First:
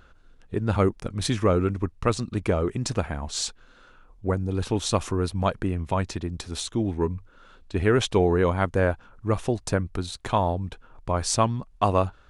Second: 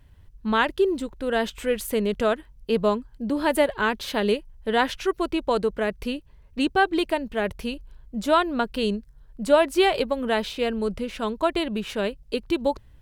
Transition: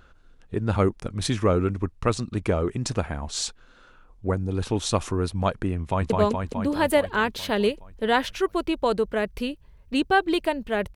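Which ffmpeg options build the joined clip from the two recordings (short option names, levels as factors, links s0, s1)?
-filter_complex "[0:a]apad=whole_dur=10.95,atrim=end=10.95,atrim=end=6.102[s0];[1:a]atrim=start=2.748:end=7.6[s1];[s0][s1]acrossfade=d=0.004:c1=hsin:c2=hsin,asplit=2[s2][s3];[s3]afade=t=in:st=5.8:d=0.01,afade=t=out:st=6.1:d=0.01,aecho=0:1:210|420|630|840|1050|1260|1470|1680|1890|2100|2310|2520:0.841395|0.588977|0.412284|0.288599|0.202019|0.141413|0.0989893|0.0692925|0.0485048|0.0339533|0.0237673|0.0166371[s4];[s2][s4]amix=inputs=2:normalize=0"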